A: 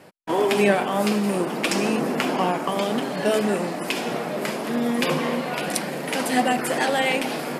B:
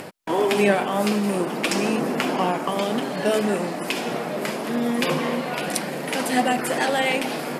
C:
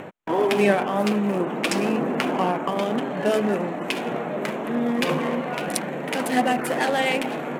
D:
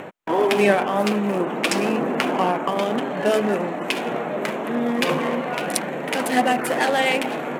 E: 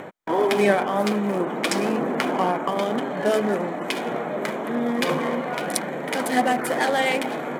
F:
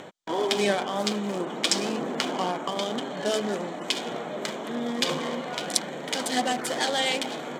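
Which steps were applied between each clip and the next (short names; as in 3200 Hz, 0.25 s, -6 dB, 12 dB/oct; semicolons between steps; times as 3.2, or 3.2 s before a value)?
upward compressor, threshold -27 dBFS
Wiener smoothing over 9 samples
low shelf 200 Hz -6.5 dB; gain +3 dB
notch 2700 Hz, Q 6.8; gain -1.5 dB
band shelf 4900 Hz +11.5 dB; gain -6 dB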